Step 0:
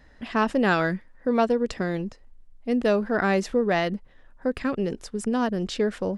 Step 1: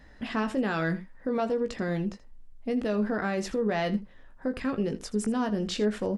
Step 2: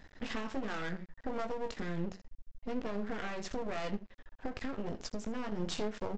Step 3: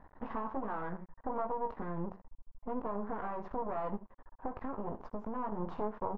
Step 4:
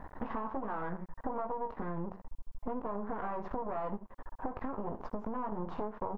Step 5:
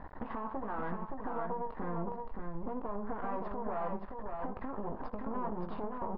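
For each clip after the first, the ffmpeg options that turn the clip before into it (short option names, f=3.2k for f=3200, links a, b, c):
-filter_complex "[0:a]equalizer=f=190:t=o:w=0.77:g=2.5,alimiter=limit=-20.5dB:level=0:latency=1:release=100,asplit=2[a][b];[b]aecho=0:1:19|80:0.422|0.168[c];[a][c]amix=inputs=2:normalize=0"
-af "acompressor=threshold=-31dB:ratio=4,flanger=delay=9.7:depth=2.6:regen=79:speed=1.3:shape=triangular,aresample=16000,aeval=exprs='max(val(0),0)':c=same,aresample=44100,volume=5.5dB"
-af "lowpass=f=1k:t=q:w=3.9,volume=-2.5dB"
-af "acompressor=threshold=-45dB:ratio=4,volume=10.5dB"
-filter_complex "[0:a]alimiter=level_in=3dB:limit=-24dB:level=0:latency=1:release=130,volume=-3dB,asplit=2[a][b];[b]aecho=0:1:571:0.596[c];[a][c]amix=inputs=2:normalize=0,aresample=11025,aresample=44100"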